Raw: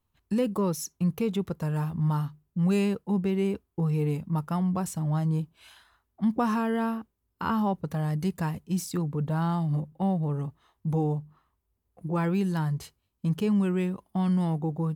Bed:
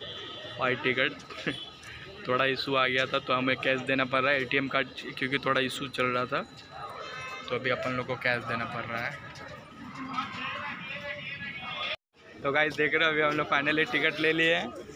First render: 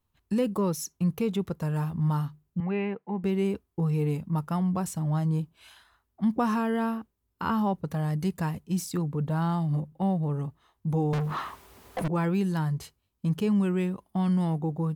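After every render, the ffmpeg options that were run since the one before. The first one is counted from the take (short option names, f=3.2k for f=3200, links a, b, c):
-filter_complex "[0:a]asettb=1/sr,asplit=3[a][b][c];[a]atrim=end=2.604[d];[b]atrim=start=2.6:end=3.24,asetpts=PTS-STARTPTS,afade=t=in:d=0.004:c=qsin,afade=t=out:st=0.636:d=0.004:c=qsin,highpass=250,equalizer=f=300:t=q:w=4:g=-7,equalizer=f=530:t=q:w=4:g=-5,equalizer=f=790:t=q:w=4:g=4,equalizer=f=1.3k:t=q:w=4:g=-5,equalizer=f=2.1k:t=q:w=4:g=6,lowpass=f=2.4k:w=0.5412,lowpass=f=2.4k:w=1.3066[e];[c]atrim=start=3.236[f];[d][e]acrossfade=d=0.004:c1=hsin:c2=qsin[g];[g][f]acrossfade=d=0.004:c1=qsin:c2=hsin,asettb=1/sr,asplit=3[h][i][j];[h]atrim=end=11.134[k];[i]atrim=start=11.13:end=12.08,asetpts=PTS-STARTPTS,afade=t=in:d=0.004:c=qsin,afade=t=out:st=0.946:d=0.004:c=qsin,asplit=2[l][m];[m]highpass=f=720:p=1,volume=45dB,asoftclip=type=tanh:threshold=-20.5dB[n];[l][n]amix=inputs=2:normalize=0,lowpass=f=4.2k:p=1,volume=-6dB[o];[j]atrim=start=12.076[p];[k][o]acrossfade=d=0.004:c1=hsin:c2=qsin[q];[q][p]acrossfade=d=0.004:c1=qsin:c2=hsin"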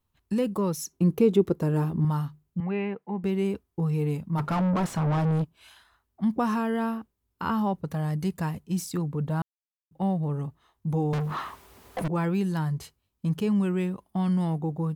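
-filter_complex "[0:a]asettb=1/sr,asplit=3[a][b][c];[a]atrim=end=0.924[d];[b]atrim=start=0.92:end=2.05,asetpts=PTS-STARTPTS,afade=t=in:d=0.004:c=qsin,afade=t=out:st=1.126:d=0.004:c=qsin,equalizer=f=350:t=o:w=1.1:g=13.5[e];[c]atrim=start=2.046[f];[d][e]acrossfade=d=0.004:c1=hsin:c2=qsin[g];[g][f]acrossfade=d=0.004:c1=qsin:c2=hsin,asplit=3[h][i][j];[h]afade=t=out:st=4.37:d=0.02[k];[i]asplit=2[l][m];[m]highpass=f=720:p=1,volume=32dB,asoftclip=type=tanh:threshold=-17.5dB[n];[l][n]amix=inputs=2:normalize=0,lowpass=f=1k:p=1,volume=-6dB,afade=t=in:st=4.37:d=0.02,afade=t=out:st=5.43:d=0.02[o];[j]afade=t=in:st=5.43:d=0.02[p];[k][o][p]amix=inputs=3:normalize=0,asplit=3[q][r][s];[q]atrim=end=9.42,asetpts=PTS-STARTPTS,afade=t=out:st=9.416:d=0.004:c=hsin[t];[r]atrim=start=9.42:end=9.91,asetpts=PTS-STARTPTS,volume=0[u];[s]atrim=start=9.91,asetpts=PTS-STARTPTS,afade=t=in:d=0.004:c=hsin[v];[t][u][v]concat=n=3:v=0:a=1"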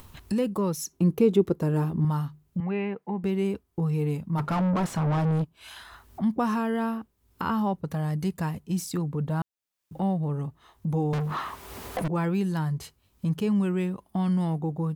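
-af "acompressor=mode=upward:threshold=-27dB:ratio=2.5"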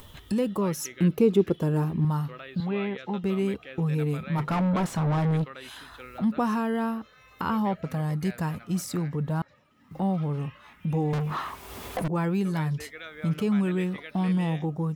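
-filter_complex "[1:a]volume=-17dB[a];[0:a][a]amix=inputs=2:normalize=0"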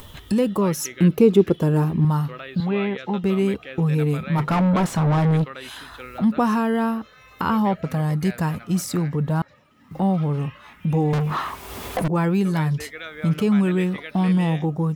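-af "volume=6dB"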